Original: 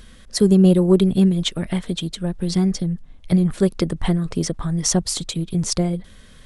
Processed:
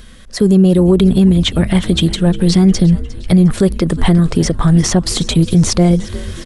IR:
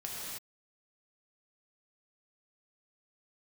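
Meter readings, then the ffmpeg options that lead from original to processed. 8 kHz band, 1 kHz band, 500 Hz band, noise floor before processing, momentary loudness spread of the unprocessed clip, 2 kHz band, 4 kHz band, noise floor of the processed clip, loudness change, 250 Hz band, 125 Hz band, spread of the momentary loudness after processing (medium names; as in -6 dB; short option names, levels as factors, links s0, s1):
+3.5 dB, +9.0 dB, +5.5 dB, -45 dBFS, 12 LU, +10.0 dB, +7.5 dB, -33 dBFS, +7.5 dB, +7.5 dB, +9.0 dB, 5 LU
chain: -filter_complex "[0:a]acrossover=split=3200[s0][s1];[s1]acompressor=threshold=0.0282:ratio=4:attack=1:release=60[s2];[s0][s2]amix=inputs=2:normalize=0,asplit=2[s3][s4];[s4]asplit=5[s5][s6][s7][s8][s9];[s5]adelay=356,afreqshift=-130,volume=0.112[s10];[s6]adelay=712,afreqshift=-260,volume=0.0653[s11];[s7]adelay=1068,afreqshift=-390,volume=0.0376[s12];[s8]adelay=1424,afreqshift=-520,volume=0.0219[s13];[s9]adelay=1780,afreqshift=-650,volume=0.0127[s14];[s10][s11][s12][s13][s14]amix=inputs=5:normalize=0[s15];[s3][s15]amix=inputs=2:normalize=0,dynaudnorm=f=100:g=9:m=3.76,alimiter=level_in=2.37:limit=0.891:release=50:level=0:latency=1,volume=0.841"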